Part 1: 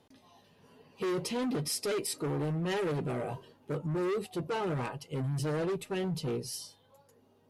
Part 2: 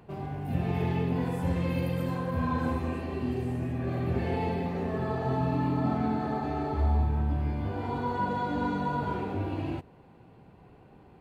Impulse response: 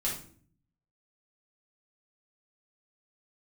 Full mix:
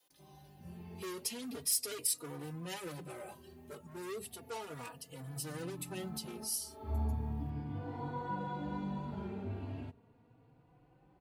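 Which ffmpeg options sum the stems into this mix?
-filter_complex "[0:a]aemphasis=mode=production:type=riaa,volume=-7dB,asplit=2[a][b];[1:a]adelay=100,volume=-9dB,afade=t=in:st=5.1:d=0.62:silence=0.266073[c];[b]apad=whole_len=498608[d];[c][d]sidechaincompress=threshold=-54dB:ratio=5:attack=36:release=237[e];[a][e]amix=inputs=2:normalize=0,adynamicequalizer=threshold=0.00251:dfrequency=170:dqfactor=1:tfrequency=170:tqfactor=1:attack=5:release=100:ratio=0.375:range=3:mode=boostabove:tftype=bell,asplit=2[f][g];[g]adelay=3.5,afreqshift=0.36[h];[f][h]amix=inputs=2:normalize=1"

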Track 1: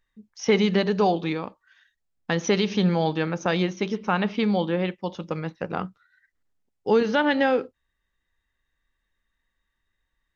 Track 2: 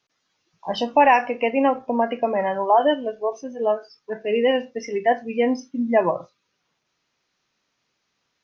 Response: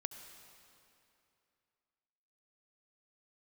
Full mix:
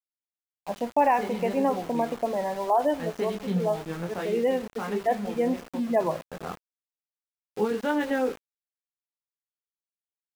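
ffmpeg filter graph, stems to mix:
-filter_complex "[0:a]bandreject=f=630:w=12,flanger=delay=20:depth=4.6:speed=1.1,adelay=700,volume=-3.5dB,asplit=2[a][b];[b]volume=-9.5dB[c];[1:a]aemphasis=mode=reproduction:type=75kf,volume=-7dB,asplit=3[d][e][f];[e]volume=-8dB[g];[f]apad=whole_len=487697[h];[a][h]sidechaincompress=threshold=-35dB:ratio=8:attack=5.4:release=390[i];[2:a]atrim=start_sample=2205[j];[c][g]amix=inputs=2:normalize=0[k];[k][j]afir=irnorm=-1:irlink=0[l];[i][d][l]amix=inputs=3:normalize=0,lowpass=f=1.6k:p=1,aeval=exprs='val(0)*gte(abs(val(0)),0.0133)':c=same"

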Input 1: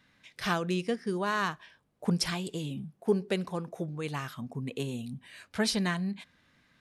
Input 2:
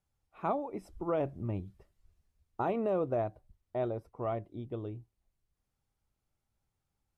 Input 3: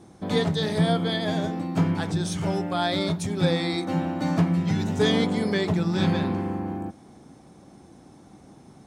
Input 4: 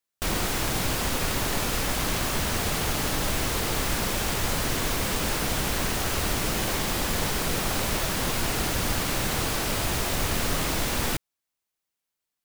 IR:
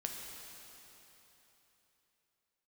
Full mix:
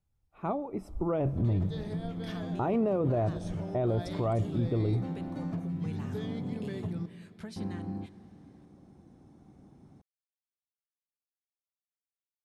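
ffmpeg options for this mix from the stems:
-filter_complex "[0:a]acompressor=threshold=-34dB:ratio=6,adelay=1850,volume=-13dB,asplit=2[a][b];[b]volume=-15dB[c];[1:a]dynaudnorm=f=680:g=3:m=12dB,volume=-5.5dB,asplit=2[d][e];[e]volume=-19.5dB[f];[2:a]highshelf=f=4k:g=-7,acompressor=threshold=-27dB:ratio=4,adelay=1150,volume=-15.5dB,asplit=3[g][h][i];[g]atrim=end=7.06,asetpts=PTS-STARTPTS,afade=t=out:st=7.056:d=0.004:c=hsin[j];[h]atrim=start=7.06:end=7.56,asetpts=PTS-STARTPTS,volume=0[k];[i]atrim=start=7.56,asetpts=PTS-STARTPTS,afade=t=in:d=0.004:c=hsin[l];[j][k][l]concat=n=3:v=0:a=1,asplit=2[m][n];[n]volume=-8dB[o];[4:a]atrim=start_sample=2205[p];[c][f][o]amix=inputs=3:normalize=0[q];[q][p]afir=irnorm=-1:irlink=0[r];[a][d][m][r]amix=inputs=4:normalize=0,lowshelf=f=310:g=10.5,alimiter=limit=-21dB:level=0:latency=1:release=17"

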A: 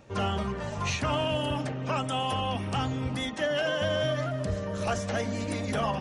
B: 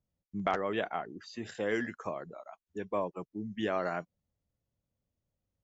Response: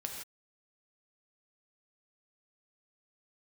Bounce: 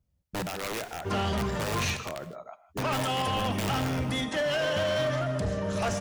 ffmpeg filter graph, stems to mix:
-filter_complex "[0:a]adelay=950,volume=-1dB,asplit=3[a][b][c];[a]atrim=end=1.97,asetpts=PTS-STARTPTS,afade=t=out:st=1.966:d=0.004:c=hsin[d];[b]atrim=start=1.97:end=2.78,asetpts=PTS-STARTPTS,volume=0[e];[c]atrim=start=2.78,asetpts=PTS-STARTPTS,afade=t=in:d=0.004:c=hsin[f];[d][e][f]concat=n=3:v=0:a=1,asplit=2[g][h];[h]volume=-4dB[i];[1:a]equalizer=f=63:t=o:w=1.8:g=12,alimiter=level_in=2dB:limit=-24dB:level=0:latency=1:release=165,volume=-2dB,aeval=exprs='(mod(31.6*val(0)+1,2)-1)/31.6':c=same,volume=0.5dB,asplit=3[j][k][l];[k]volume=-6.5dB[m];[l]volume=-16dB[n];[2:a]atrim=start_sample=2205[o];[i][m]amix=inputs=2:normalize=0[p];[p][o]afir=irnorm=-1:irlink=0[q];[n]aecho=0:1:154:1[r];[g][j][q][r]amix=inputs=4:normalize=0,asoftclip=type=hard:threshold=-24.5dB"

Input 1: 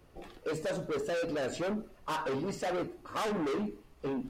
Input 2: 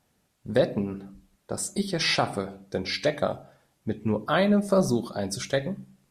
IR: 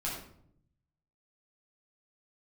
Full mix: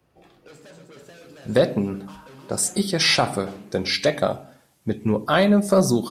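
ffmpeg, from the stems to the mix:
-filter_complex "[0:a]highpass=84,acrossover=split=240|1500|3500[a][b][c][d];[a]acompressor=threshold=-49dB:ratio=4[e];[b]acompressor=threshold=-45dB:ratio=4[f];[c]acompressor=threshold=-52dB:ratio=4[g];[d]acompressor=threshold=-51dB:ratio=4[h];[e][f][g][h]amix=inputs=4:normalize=0,volume=-6.5dB,asplit=3[i][j][k];[j]volume=-5.5dB[l];[k]volume=-5dB[m];[1:a]highpass=61,highshelf=f=5.8k:g=6,acontrast=83,adelay=1000,volume=-2dB[n];[2:a]atrim=start_sample=2205[o];[l][o]afir=irnorm=-1:irlink=0[p];[m]aecho=0:1:310:1[q];[i][n][p][q]amix=inputs=4:normalize=0"

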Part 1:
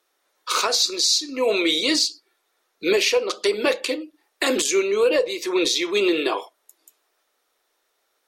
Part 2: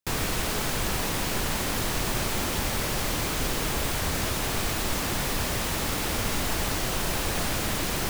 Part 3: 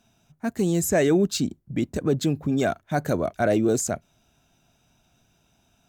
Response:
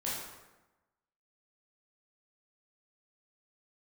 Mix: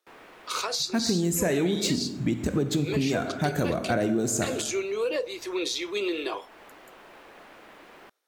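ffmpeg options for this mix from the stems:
-filter_complex "[0:a]highpass=f=180:w=0.5412,highpass=f=180:w=1.3066,volume=-8.5dB,asplit=2[a][b];[1:a]acrossover=split=270 2900:gain=0.0708 1 0.112[c][d][e];[c][d][e]amix=inputs=3:normalize=0,volume=-16.5dB[f];[2:a]equalizer=f=570:t=o:w=0.77:g=-4,adelay=500,volume=2dB,asplit=2[g][h];[h]volume=-9dB[i];[b]apad=whole_len=356993[j];[f][j]sidechaincompress=threshold=-36dB:ratio=8:attack=38:release=355[k];[3:a]atrim=start_sample=2205[l];[i][l]afir=irnorm=-1:irlink=0[m];[a][k][g][m]amix=inputs=4:normalize=0,acompressor=threshold=-22dB:ratio=6"

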